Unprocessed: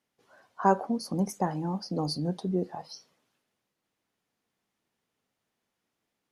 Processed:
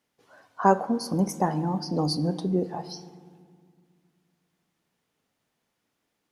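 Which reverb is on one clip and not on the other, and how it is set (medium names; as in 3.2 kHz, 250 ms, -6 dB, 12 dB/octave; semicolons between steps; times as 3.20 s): FDN reverb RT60 1.9 s, low-frequency decay 1.55×, high-frequency decay 0.4×, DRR 12.5 dB; trim +4 dB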